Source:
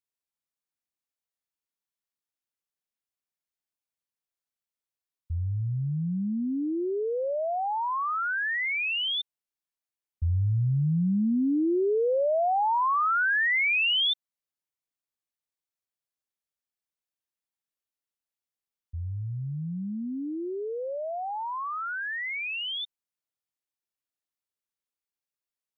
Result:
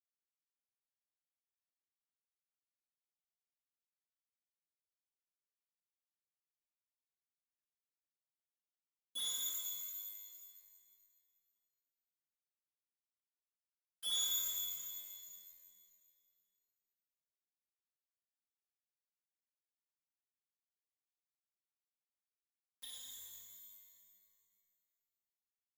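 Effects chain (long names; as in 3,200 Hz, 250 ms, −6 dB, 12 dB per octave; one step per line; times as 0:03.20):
compressor on every frequency bin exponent 0.4
inverse Chebyshev band-stop filter 130–1,400 Hz, stop band 70 dB
downward expander −33 dBFS
spectral tilt +3 dB per octave
in parallel at −0.5 dB: brickwall limiter −50.5 dBFS, peak gain reduction 9.5 dB
on the sum: bit-depth reduction 8 bits, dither none
phases set to zero 262 Hz
on a send: flutter between parallel walls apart 9.8 metres, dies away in 0.46 s
on the sum: harmonic generator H 5 −16 dB, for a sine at −30 dBFS
reverb with rising layers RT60 2.1 s, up +12 semitones, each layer −2 dB, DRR −7.5 dB
level +3.5 dB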